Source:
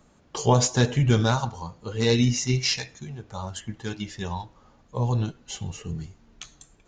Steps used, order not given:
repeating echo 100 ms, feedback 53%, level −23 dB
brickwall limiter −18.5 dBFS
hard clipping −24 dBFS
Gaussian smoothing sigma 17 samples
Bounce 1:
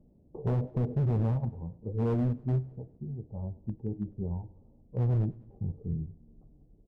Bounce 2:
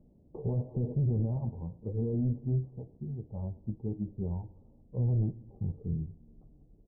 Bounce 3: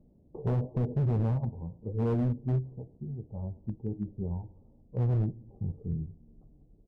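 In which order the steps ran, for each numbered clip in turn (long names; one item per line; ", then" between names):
Gaussian smoothing, then brickwall limiter, then hard clipping, then repeating echo
repeating echo, then brickwall limiter, then hard clipping, then Gaussian smoothing
Gaussian smoothing, then brickwall limiter, then repeating echo, then hard clipping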